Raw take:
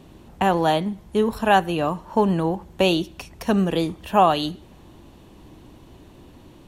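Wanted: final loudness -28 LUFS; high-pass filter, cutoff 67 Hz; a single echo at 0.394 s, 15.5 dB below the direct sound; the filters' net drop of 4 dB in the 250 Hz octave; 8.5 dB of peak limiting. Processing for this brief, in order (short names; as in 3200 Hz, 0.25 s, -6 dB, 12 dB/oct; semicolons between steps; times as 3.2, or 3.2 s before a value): HPF 67 Hz; bell 250 Hz -6 dB; limiter -13 dBFS; echo 0.394 s -15.5 dB; gain -2 dB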